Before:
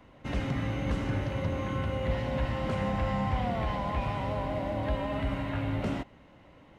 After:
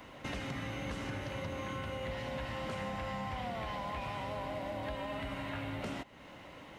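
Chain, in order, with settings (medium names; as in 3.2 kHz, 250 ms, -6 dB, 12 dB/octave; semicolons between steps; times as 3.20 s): tilt EQ +2 dB/octave; compression 3:1, threshold -47 dBFS, peak gain reduction 13.5 dB; trim +6.5 dB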